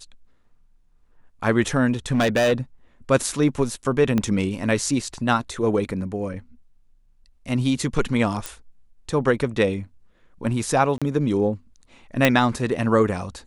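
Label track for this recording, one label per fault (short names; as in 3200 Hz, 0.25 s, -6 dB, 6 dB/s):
2.110000	2.530000	clipped -15.5 dBFS
4.180000	4.180000	pop -10 dBFS
8.460000	8.460000	pop
10.980000	11.020000	gap 36 ms
12.250000	12.250000	pop -2 dBFS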